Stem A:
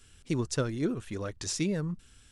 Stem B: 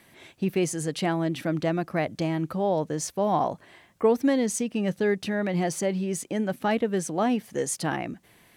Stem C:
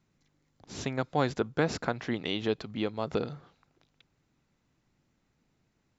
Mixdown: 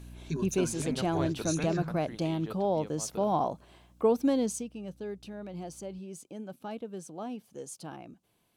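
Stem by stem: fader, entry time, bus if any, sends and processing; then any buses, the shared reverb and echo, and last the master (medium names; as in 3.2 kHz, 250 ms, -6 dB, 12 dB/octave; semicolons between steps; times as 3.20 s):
-5.0 dB, 0.00 s, no send, rippled EQ curve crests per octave 1.5, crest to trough 17 dB; stepped phaser 11 Hz 230–4400 Hz
4.45 s -3.5 dB -> 4.76 s -14 dB, 0.00 s, no send, peaking EQ 1.9 kHz -14.5 dB 0.39 oct
0.0 dB, 0.00 s, no send, hum 60 Hz, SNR 11 dB; auto duck -14 dB, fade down 1.90 s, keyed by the second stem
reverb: none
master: none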